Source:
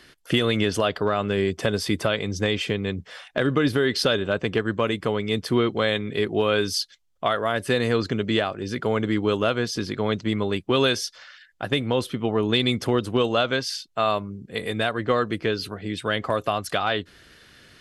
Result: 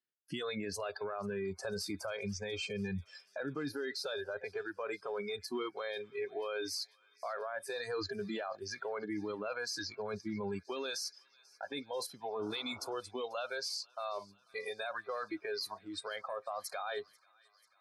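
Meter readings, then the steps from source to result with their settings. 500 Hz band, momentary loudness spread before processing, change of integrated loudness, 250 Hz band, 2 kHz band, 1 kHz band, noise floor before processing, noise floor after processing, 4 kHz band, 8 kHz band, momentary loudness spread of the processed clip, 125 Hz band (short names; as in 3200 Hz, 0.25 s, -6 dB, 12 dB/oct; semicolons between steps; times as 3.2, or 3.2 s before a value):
-15.0 dB, 7 LU, -15.5 dB, -17.5 dB, -14.5 dB, -14.5 dB, -54 dBFS, -69 dBFS, -15.0 dB, -9.0 dB, 5 LU, -21.0 dB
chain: spectral noise reduction 26 dB; HPF 110 Hz; gate with hold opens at -46 dBFS; reverse; compressor 6:1, threshold -32 dBFS, peak gain reduction 14 dB; reverse; limiter -31 dBFS, peak gain reduction 10 dB; painted sound noise, 12.39–12.94, 260–1500 Hz -55 dBFS; on a send: thin delay 0.49 s, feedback 71%, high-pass 1400 Hz, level -24 dB; on the sum: gain +1 dB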